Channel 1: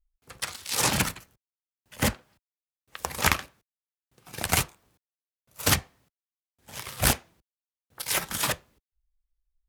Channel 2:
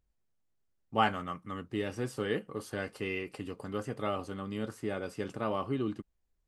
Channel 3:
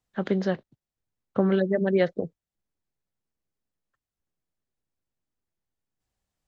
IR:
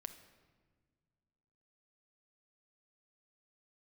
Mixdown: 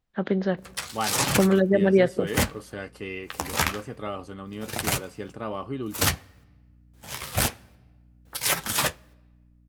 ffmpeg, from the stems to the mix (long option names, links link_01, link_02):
-filter_complex "[0:a]flanger=delay=7:depth=7.1:regen=-36:speed=1.1:shape=sinusoidal,aeval=exprs='val(0)+0.000891*(sin(2*PI*60*n/s)+sin(2*PI*2*60*n/s)/2+sin(2*PI*3*60*n/s)/3+sin(2*PI*4*60*n/s)/4+sin(2*PI*5*60*n/s)/5)':channel_layout=same,adelay=350,volume=2dB,asplit=2[link_01][link_02];[link_02]volume=-14.5dB[link_03];[1:a]volume=-3.5dB[link_04];[2:a]lowpass=4300,volume=0dB,asplit=2[link_05][link_06];[link_06]volume=-14dB[link_07];[link_01][link_05]amix=inputs=2:normalize=0,alimiter=limit=-13dB:level=0:latency=1:release=430,volume=0dB[link_08];[3:a]atrim=start_sample=2205[link_09];[link_03][link_07]amix=inputs=2:normalize=0[link_10];[link_10][link_09]afir=irnorm=-1:irlink=0[link_11];[link_04][link_08][link_11]amix=inputs=3:normalize=0,dynaudnorm=framelen=450:gausssize=5:maxgain=4dB"